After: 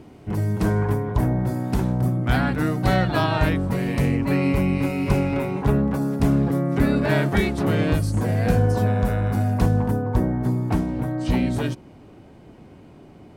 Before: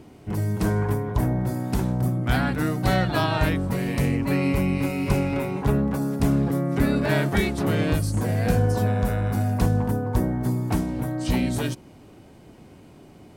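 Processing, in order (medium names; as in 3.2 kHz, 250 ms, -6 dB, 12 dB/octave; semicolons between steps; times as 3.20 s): treble shelf 4.5 kHz -6 dB, from 10.02 s -11.5 dB; trim +2 dB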